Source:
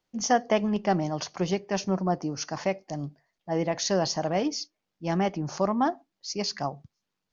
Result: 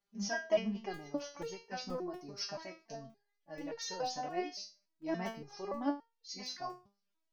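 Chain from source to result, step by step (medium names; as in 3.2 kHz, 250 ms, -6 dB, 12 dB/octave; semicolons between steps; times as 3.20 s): sawtooth pitch modulation -1.5 st, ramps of 164 ms; crackling interface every 0.24 s, samples 128, zero, from 0.94 s; resonator arpeggio 3.5 Hz 200–460 Hz; trim +6 dB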